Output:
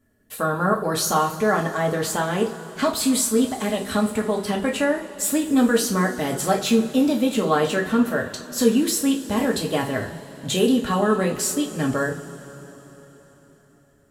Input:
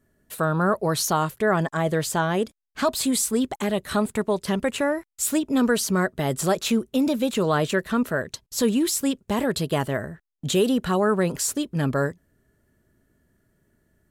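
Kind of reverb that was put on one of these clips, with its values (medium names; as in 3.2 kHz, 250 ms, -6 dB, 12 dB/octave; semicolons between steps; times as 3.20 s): two-slope reverb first 0.3 s, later 4.3 s, from -21 dB, DRR -1 dB; trim -1.5 dB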